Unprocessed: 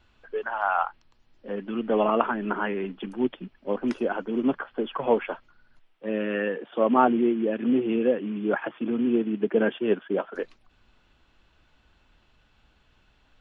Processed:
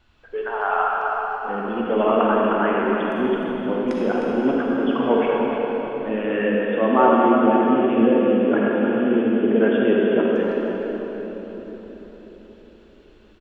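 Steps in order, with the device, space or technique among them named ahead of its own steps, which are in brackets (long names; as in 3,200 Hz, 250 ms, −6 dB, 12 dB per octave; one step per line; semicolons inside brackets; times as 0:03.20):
cave (single-tap delay 308 ms −9 dB; convolution reverb RT60 4.4 s, pre-delay 37 ms, DRR −3.5 dB)
level +1 dB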